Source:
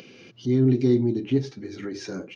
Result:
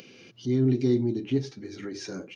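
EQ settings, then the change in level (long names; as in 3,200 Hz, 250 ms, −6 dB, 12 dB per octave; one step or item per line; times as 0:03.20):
high-shelf EQ 4,500 Hz +6 dB
−3.5 dB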